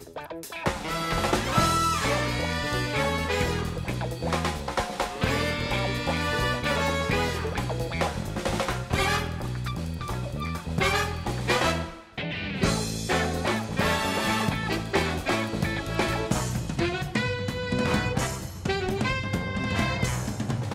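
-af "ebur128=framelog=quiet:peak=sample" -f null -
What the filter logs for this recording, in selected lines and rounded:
Integrated loudness:
  I:         -27.1 LUFS
  Threshold: -37.1 LUFS
Loudness range:
  LRA:         2.3 LU
  Threshold: -47.1 LUFS
  LRA low:   -28.1 LUFS
  LRA high:  -25.9 LUFS
Sample peak:
  Peak:       -8.8 dBFS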